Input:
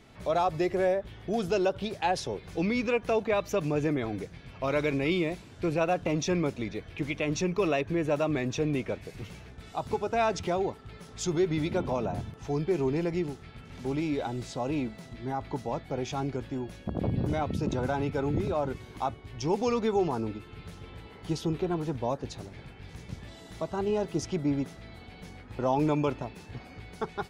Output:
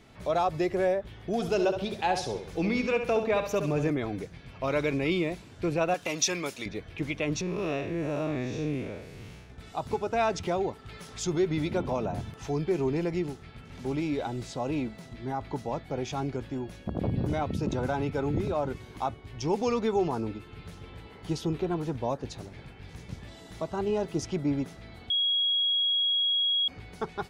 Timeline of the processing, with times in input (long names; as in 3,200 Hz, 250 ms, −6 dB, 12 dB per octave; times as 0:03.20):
0:01.33–0:03.90: flutter between parallel walls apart 11.7 metres, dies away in 0.5 s
0:05.94–0:06.66: spectral tilt +4 dB per octave
0:07.41–0:09.50: spectrum smeared in time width 155 ms
0:10.51–0:13.32: one half of a high-frequency compander encoder only
0:25.10–0:26.68: beep over 3,310 Hz −23 dBFS